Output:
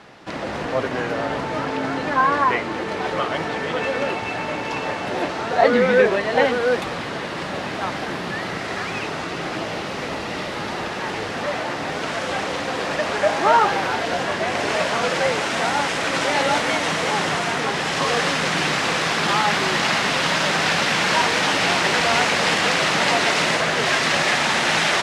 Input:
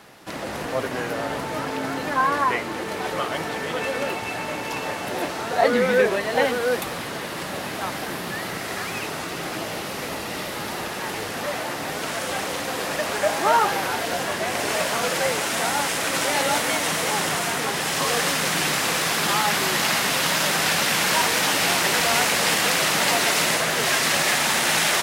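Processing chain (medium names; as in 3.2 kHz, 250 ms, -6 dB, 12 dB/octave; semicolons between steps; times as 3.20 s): distance through air 100 m; trim +3.5 dB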